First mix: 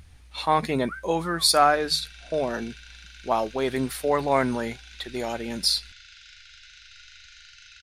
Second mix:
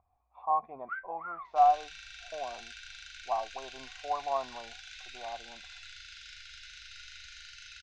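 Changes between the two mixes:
speech: add vocal tract filter a; master: add bell 160 Hz -3.5 dB 1 oct

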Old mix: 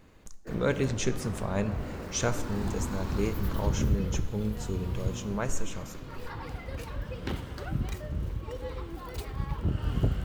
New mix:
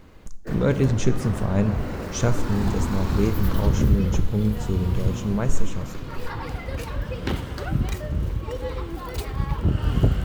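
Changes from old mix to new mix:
speech: add low shelf 390 Hz +11.5 dB; background +7.5 dB

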